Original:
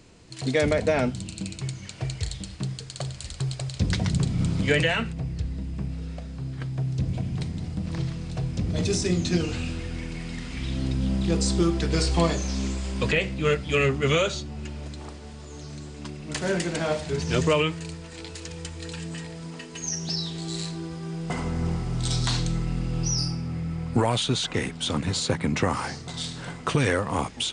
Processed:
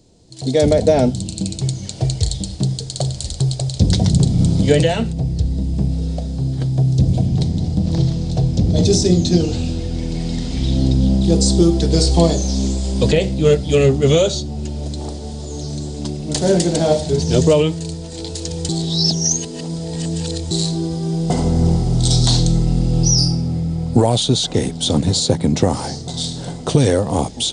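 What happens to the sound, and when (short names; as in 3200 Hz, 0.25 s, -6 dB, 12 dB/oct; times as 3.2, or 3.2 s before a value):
7.26–11.22 LPF 7600 Hz
18.69–20.51 reverse
whole clip: band shelf 1700 Hz -14 dB; AGC gain up to 13 dB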